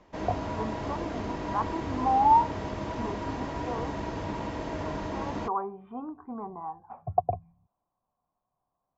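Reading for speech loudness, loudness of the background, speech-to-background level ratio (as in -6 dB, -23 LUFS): -31.0 LUFS, -34.5 LUFS, 3.5 dB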